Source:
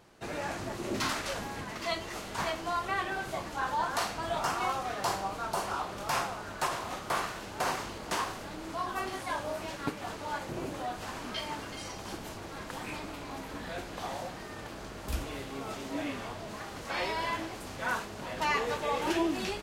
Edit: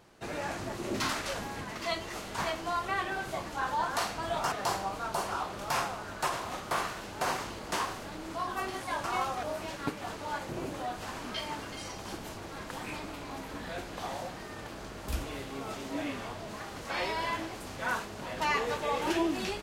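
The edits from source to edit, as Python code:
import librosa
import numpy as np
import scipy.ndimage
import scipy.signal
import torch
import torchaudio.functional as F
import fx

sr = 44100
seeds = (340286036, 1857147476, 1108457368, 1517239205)

y = fx.edit(x, sr, fx.move(start_s=4.52, length_s=0.39, to_s=9.43), tone=tone)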